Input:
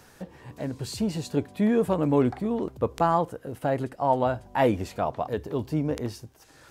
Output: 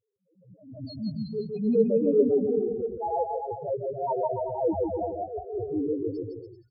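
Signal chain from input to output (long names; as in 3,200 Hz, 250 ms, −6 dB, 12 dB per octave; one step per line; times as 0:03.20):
noise gate −44 dBFS, range −21 dB
parametric band 420 Hz +7.5 dB 0.54 octaves
spectral peaks only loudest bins 1
bouncing-ball delay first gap 160 ms, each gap 0.8×, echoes 5
level that may rise only so fast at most 110 dB per second
level +3 dB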